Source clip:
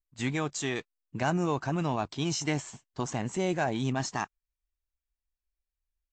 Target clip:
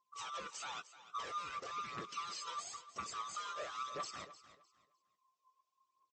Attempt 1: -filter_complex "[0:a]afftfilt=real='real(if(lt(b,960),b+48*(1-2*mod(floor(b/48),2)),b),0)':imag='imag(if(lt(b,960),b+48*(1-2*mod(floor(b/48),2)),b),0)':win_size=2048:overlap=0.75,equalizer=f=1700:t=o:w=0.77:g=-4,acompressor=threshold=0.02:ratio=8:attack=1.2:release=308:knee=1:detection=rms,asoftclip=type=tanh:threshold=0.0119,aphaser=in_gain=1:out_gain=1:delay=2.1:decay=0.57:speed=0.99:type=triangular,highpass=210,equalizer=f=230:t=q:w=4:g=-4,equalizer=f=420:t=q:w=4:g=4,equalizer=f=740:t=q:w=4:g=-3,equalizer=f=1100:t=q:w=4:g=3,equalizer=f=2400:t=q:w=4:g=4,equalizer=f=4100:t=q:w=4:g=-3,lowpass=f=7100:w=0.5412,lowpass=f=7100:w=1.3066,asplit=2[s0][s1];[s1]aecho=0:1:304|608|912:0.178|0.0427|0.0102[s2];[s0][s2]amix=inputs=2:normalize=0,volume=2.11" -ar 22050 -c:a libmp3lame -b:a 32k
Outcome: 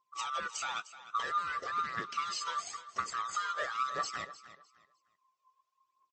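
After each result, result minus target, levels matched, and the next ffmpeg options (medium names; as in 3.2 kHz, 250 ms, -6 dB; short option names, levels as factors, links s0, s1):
saturation: distortion -8 dB; 2 kHz band +3.0 dB
-filter_complex "[0:a]afftfilt=real='real(if(lt(b,960),b+48*(1-2*mod(floor(b/48),2)),b),0)':imag='imag(if(lt(b,960),b+48*(1-2*mod(floor(b/48),2)),b),0)':win_size=2048:overlap=0.75,equalizer=f=1700:t=o:w=0.77:g=-4,acompressor=threshold=0.02:ratio=8:attack=1.2:release=308:knee=1:detection=rms,asoftclip=type=tanh:threshold=0.00299,aphaser=in_gain=1:out_gain=1:delay=2.1:decay=0.57:speed=0.99:type=triangular,highpass=210,equalizer=f=230:t=q:w=4:g=-4,equalizer=f=420:t=q:w=4:g=4,equalizer=f=740:t=q:w=4:g=-3,equalizer=f=1100:t=q:w=4:g=3,equalizer=f=2400:t=q:w=4:g=4,equalizer=f=4100:t=q:w=4:g=-3,lowpass=f=7100:w=0.5412,lowpass=f=7100:w=1.3066,asplit=2[s0][s1];[s1]aecho=0:1:304|608|912:0.178|0.0427|0.0102[s2];[s0][s2]amix=inputs=2:normalize=0,volume=2.11" -ar 22050 -c:a libmp3lame -b:a 32k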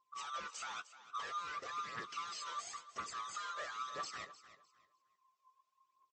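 2 kHz band +3.0 dB
-filter_complex "[0:a]afftfilt=real='real(if(lt(b,960),b+48*(1-2*mod(floor(b/48),2)),b),0)':imag='imag(if(lt(b,960),b+48*(1-2*mod(floor(b/48),2)),b),0)':win_size=2048:overlap=0.75,equalizer=f=1700:t=o:w=0.77:g=-16,acompressor=threshold=0.02:ratio=8:attack=1.2:release=308:knee=1:detection=rms,asoftclip=type=tanh:threshold=0.00299,aphaser=in_gain=1:out_gain=1:delay=2.1:decay=0.57:speed=0.99:type=triangular,highpass=210,equalizer=f=230:t=q:w=4:g=-4,equalizer=f=420:t=q:w=4:g=4,equalizer=f=740:t=q:w=4:g=-3,equalizer=f=1100:t=q:w=4:g=3,equalizer=f=2400:t=q:w=4:g=4,equalizer=f=4100:t=q:w=4:g=-3,lowpass=f=7100:w=0.5412,lowpass=f=7100:w=1.3066,asplit=2[s0][s1];[s1]aecho=0:1:304|608|912:0.178|0.0427|0.0102[s2];[s0][s2]amix=inputs=2:normalize=0,volume=2.11" -ar 22050 -c:a libmp3lame -b:a 32k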